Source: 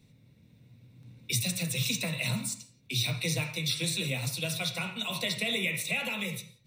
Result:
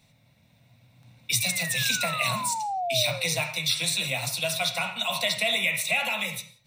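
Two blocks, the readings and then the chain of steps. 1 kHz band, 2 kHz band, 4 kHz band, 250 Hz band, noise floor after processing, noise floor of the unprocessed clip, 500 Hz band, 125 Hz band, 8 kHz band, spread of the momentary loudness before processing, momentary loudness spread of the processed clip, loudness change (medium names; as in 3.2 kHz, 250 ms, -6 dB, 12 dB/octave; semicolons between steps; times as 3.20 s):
+14.0 dB, +6.5 dB, +5.5 dB, -4.0 dB, -62 dBFS, -62 dBFS, +7.0 dB, -3.0 dB, +5.5 dB, 5 LU, 4 LU, +5.5 dB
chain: painted sound fall, 1.40–3.39 s, 450–2400 Hz -40 dBFS; resonant low shelf 530 Hz -8 dB, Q 3; trim +5.5 dB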